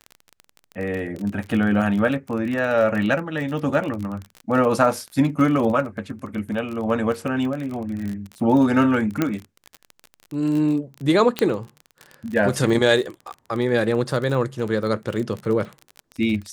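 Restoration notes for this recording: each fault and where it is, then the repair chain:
crackle 32 per s -27 dBFS
9.22 s: pop -7 dBFS
11.39 s: pop -7 dBFS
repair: de-click

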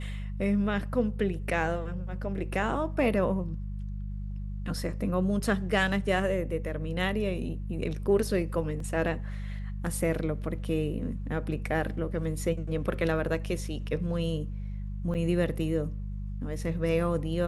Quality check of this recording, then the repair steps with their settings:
hum 50 Hz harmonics 4 -35 dBFS
8.80 s: dropout 2.7 ms
15.14–15.15 s: dropout 8 ms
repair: de-hum 50 Hz, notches 4; interpolate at 8.80 s, 2.7 ms; interpolate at 15.14 s, 8 ms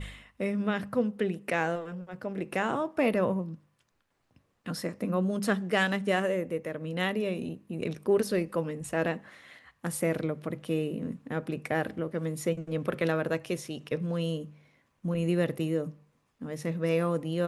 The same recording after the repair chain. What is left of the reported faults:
nothing left

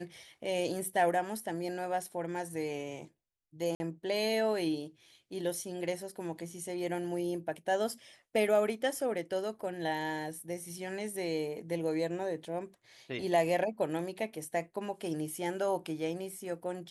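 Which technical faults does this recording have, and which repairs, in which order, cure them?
3.75–3.80 s: dropout 50 ms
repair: interpolate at 3.75 s, 50 ms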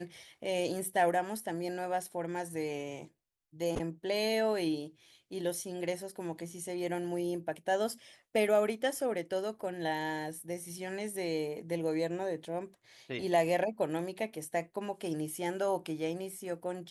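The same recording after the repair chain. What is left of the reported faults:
nothing left

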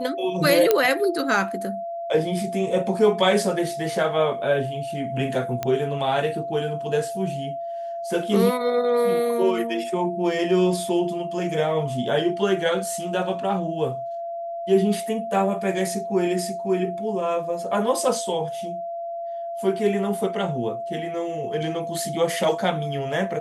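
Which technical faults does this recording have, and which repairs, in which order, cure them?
whine 680 Hz -28 dBFS
0.71 s: pop -4 dBFS
5.63 s: pop -12 dBFS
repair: de-click; band-stop 680 Hz, Q 30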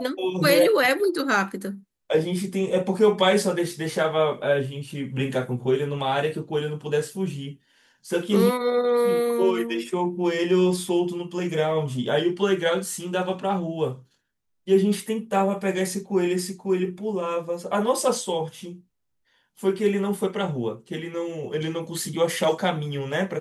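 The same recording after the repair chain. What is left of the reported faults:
nothing left

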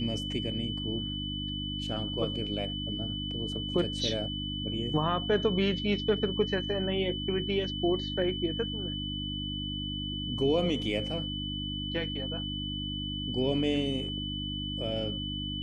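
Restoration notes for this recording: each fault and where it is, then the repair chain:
hum 50 Hz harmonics 6 -37 dBFS
whine 3 kHz -36 dBFS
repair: de-hum 50 Hz, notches 6; band-stop 3 kHz, Q 30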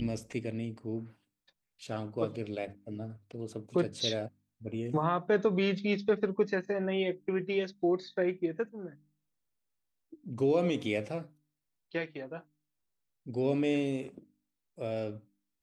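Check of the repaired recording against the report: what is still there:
nothing left

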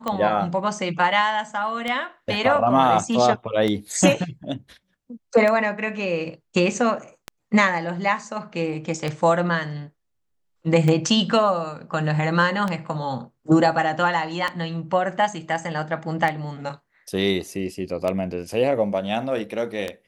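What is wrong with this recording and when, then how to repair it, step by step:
tick 33 1/3 rpm -12 dBFS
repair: de-click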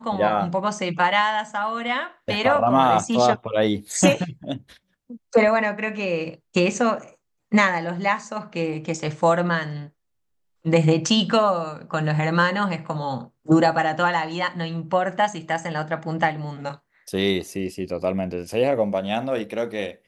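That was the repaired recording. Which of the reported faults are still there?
nothing left

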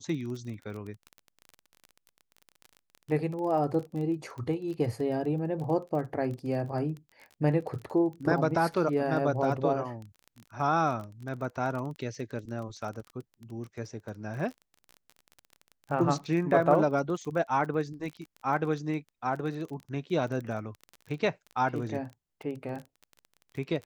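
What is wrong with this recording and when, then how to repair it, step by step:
crackle 23 per s -36 dBFS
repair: de-click

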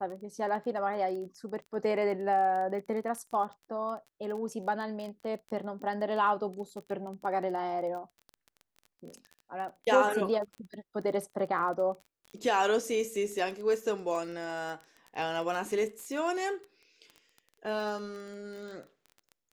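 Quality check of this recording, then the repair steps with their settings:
crackle 20 per s -38 dBFS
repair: de-click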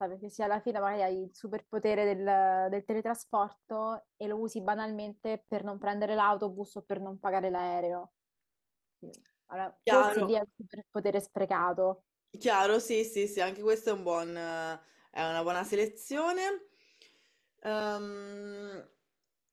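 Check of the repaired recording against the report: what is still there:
nothing left

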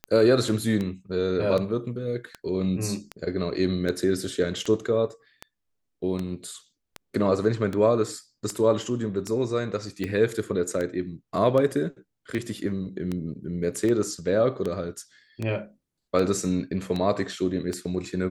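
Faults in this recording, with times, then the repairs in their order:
tick 78 rpm -17 dBFS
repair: de-click

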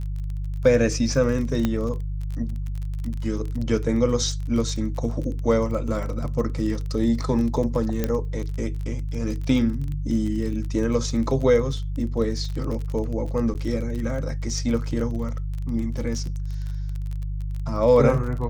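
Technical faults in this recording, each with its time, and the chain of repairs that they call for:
crackle 29 per s -29 dBFS
hum 50 Hz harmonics 3 -28 dBFS
1.65 s: pop -10 dBFS
8.04 s: pop -10 dBFS
13.54–13.55 s: dropout 9.5 ms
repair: de-click; de-hum 50 Hz, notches 3; interpolate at 13.54 s, 9.5 ms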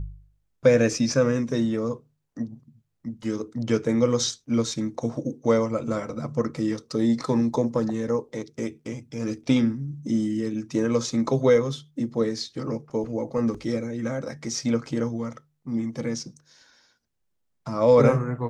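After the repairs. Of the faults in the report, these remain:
1.65 s: pop

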